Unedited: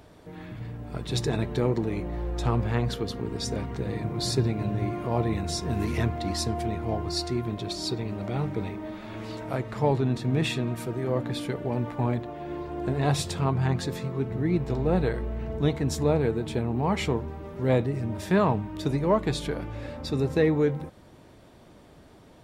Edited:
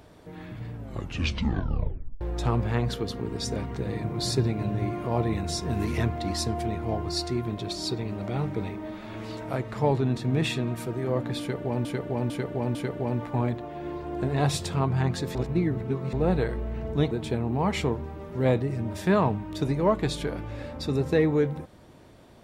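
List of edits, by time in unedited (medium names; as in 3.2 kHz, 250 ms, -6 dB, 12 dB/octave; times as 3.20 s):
0.74 s: tape stop 1.47 s
11.40–11.85 s: loop, 4 plays
14.00–14.78 s: reverse
15.76–16.35 s: delete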